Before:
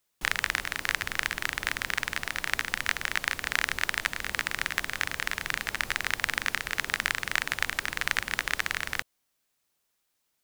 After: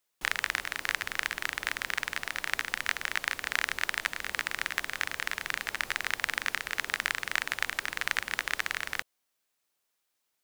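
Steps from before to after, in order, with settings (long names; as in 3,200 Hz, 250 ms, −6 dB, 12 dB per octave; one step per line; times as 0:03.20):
bass and treble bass −7 dB, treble −1 dB
level −2 dB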